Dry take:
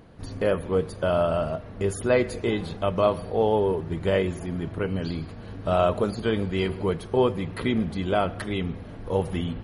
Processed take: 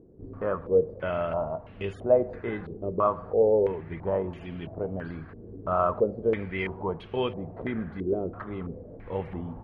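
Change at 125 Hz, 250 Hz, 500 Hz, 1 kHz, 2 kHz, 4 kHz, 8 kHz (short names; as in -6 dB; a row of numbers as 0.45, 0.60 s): -7.5 dB, -6.0 dB, -2.0 dB, -2.5 dB, -5.5 dB, under -10 dB, n/a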